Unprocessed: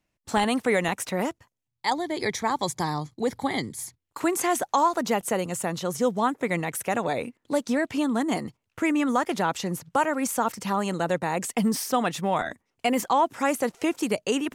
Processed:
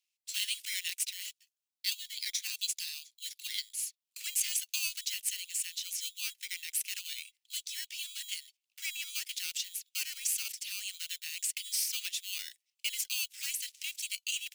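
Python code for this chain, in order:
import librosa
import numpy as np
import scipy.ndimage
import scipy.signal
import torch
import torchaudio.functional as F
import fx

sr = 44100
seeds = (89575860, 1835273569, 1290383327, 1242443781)

p1 = fx.sample_hold(x, sr, seeds[0], rate_hz=3600.0, jitter_pct=0)
p2 = x + (p1 * librosa.db_to_amplitude(-5.5))
y = scipy.signal.sosfilt(scipy.signal.butter(6, 2600.0, 'highpass', fs=sr, output='sos'), p2)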